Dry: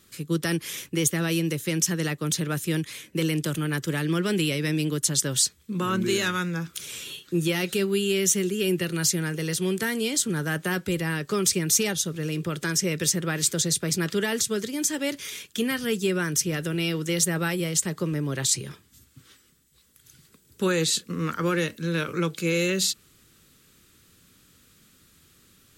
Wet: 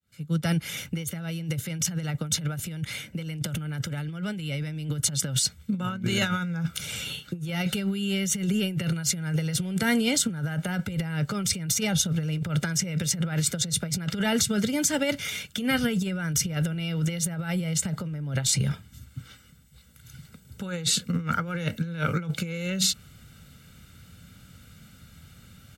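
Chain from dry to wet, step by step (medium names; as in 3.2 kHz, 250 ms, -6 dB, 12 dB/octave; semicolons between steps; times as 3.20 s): fade-in on the opening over 1.03 s; high-pass 52 Hz 6 dB/octave; tone controls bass +7 dB, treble -7 dB; comb 1.4 ms, depth 70%; compressor with a negative ratio -26 dBFS, ratio -0.5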